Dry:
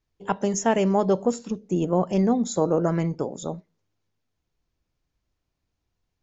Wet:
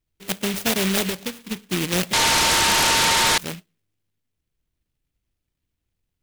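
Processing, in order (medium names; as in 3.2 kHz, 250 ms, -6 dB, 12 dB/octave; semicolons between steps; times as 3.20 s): bit-reversed sample order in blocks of 32 samples; 1.09–1.52 s: compression 6:1, threshold -25 dBFS, peak gain reduction 9 dB; 2.13–3.38 s: bleep 911 Hz -15 dBFS; delay time shaken by noise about 2.5 kHz, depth 0.25 ms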